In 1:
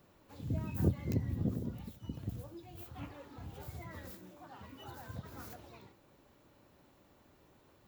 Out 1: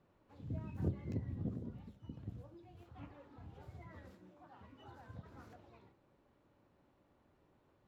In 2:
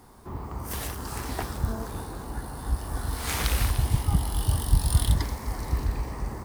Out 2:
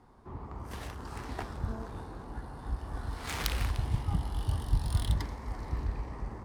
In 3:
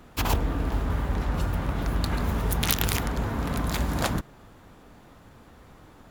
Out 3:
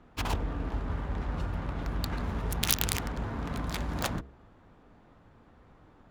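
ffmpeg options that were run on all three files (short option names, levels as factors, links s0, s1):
-af "adynamicsmooth=sensitivity=2:basefreq=2000,aemphasis=mode=production:type=75kf,bandreject=f=67:t=h:w=4,bandreject=f=134:t=h:w=4,bandreject=f=201:t=h:w=4,bandreject=f=268:t=h:w=4,bandreject=f=335:t=h:w=4,bandreject=f=402:t=h:w=4,bandreject=f=469:t=h:w=4,bandreject=f=536:t=h:w=4,bandreject=f=603:t=h:w=4,bandreject=f=670:t=h:w=4,volume=0.501"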